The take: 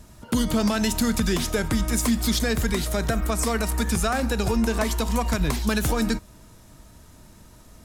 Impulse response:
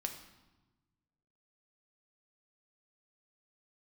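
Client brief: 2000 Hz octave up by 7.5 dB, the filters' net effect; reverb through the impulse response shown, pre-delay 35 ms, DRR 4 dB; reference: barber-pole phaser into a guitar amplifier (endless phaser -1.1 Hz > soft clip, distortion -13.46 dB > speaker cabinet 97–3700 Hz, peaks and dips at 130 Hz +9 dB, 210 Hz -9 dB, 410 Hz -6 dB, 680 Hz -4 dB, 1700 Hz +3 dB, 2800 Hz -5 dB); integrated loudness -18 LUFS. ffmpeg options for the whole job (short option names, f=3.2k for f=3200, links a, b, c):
-filter_complex "[0:a]equalizer=f=2k:t=o:g=8,asplit=2[a][b];[1:a]atrim=start_sample=2205,adelay=35[c];[b][c]afir=irnorm=-1:irlink=0,volume=-3.5dB[d];[a][d]amix=inputs=2:normalize=0,asplit=2[e][f];[f]afreqshift=-1.1[g];[e][g]amix=inputs=2:normalize=1,asoftclip=threshold=-20dB,highpass=97,equalizer=f=130:t=q:w=4:g=9,equalizer=f=210:t=q:w=4:g=-9,equalizer=f=410:t=q:w=4:g=-6,equalizer=f=680:t=q:w=4:g=-4,equalizer=f=1.7k:t=q:w=4:g=3,equalizer=f=2.8k:t=q:w=4:g=-5,lowpass=f=3.7k:w=0.5412,lowpass=f=3.7k:w=1.3066,volume=11.5dB"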